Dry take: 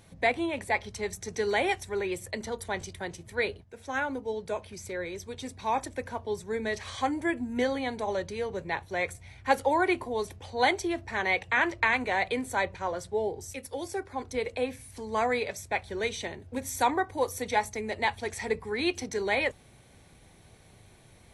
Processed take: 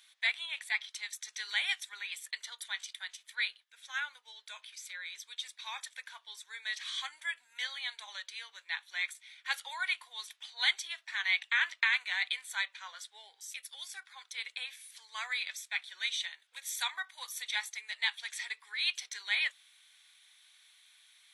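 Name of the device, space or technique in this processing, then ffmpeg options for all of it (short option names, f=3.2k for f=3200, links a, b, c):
headphones lying on a table: -af "highpass=f=1.4k:w=0.5412,highpass=f=1.4k:w=1.3066,equalizer=f=3.5k:t=o:w=0.42:g=10.5,volume=-2.5dB"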